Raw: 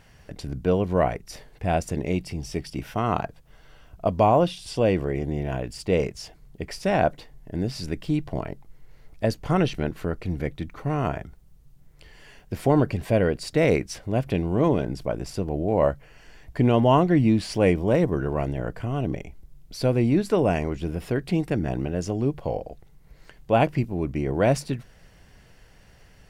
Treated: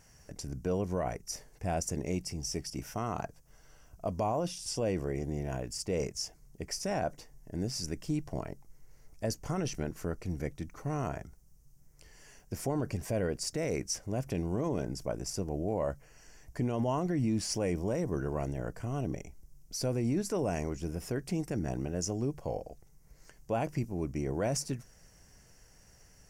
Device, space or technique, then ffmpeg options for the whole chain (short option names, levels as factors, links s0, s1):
over-bright horn tweeter: -af "highshelf=f=4700:t=q:w=3:g=7.5,alimiter=limit=0.168:level=0:latency=1:release=24,volume=0.422"